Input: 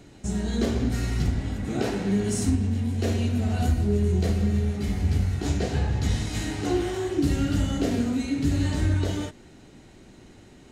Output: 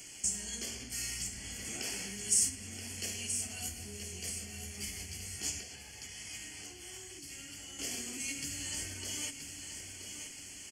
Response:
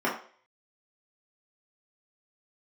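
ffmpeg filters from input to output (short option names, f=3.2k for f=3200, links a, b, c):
-filter_complex "[0:a]asuperstop=centerf=3800:order=12:qfactor=4.6,equalizer=f=8.6k:t=o:w=0.7:g=4,acompressor=threshold=-33dB:ratio=6,tiltshelf=f=750:g=-6,aecho=1:1:977|1954|2931|3908|4885:0.376|0.165|0.0728|0.032|0.0141,asettb=1/sr,asplit=3[a][b][c];[a]atrim=end=5.604[d];[b]atrim=start=5.6:end=7.79,asetpts=PTS-STARTPTS,afade=t=in:d=0.004:c=qsin,afade=t=out:st=2.186:d=0.004:c=qsin,acrossover=split=240|3200[e][f][g];[e]acompressor=threshold=-50dB:ratio=4[h];[f]acompressor=threshold=-48dB:ratio=4[i];[g]acompressor=threshold=-56dB:ratio=4[j];[h][i][j]amix=inputs=3:normalize=0[k];[c]atrim=start=7.786[l];[d][k]acrossfade=d=0.004:c1=hsin:c2=qsin[m];[m][l]acrossfade=d=0.004:c1=qsin:c2=hsin,aexciter=amount=5:drive=3.3:freq=2k,volume=-8.5dB"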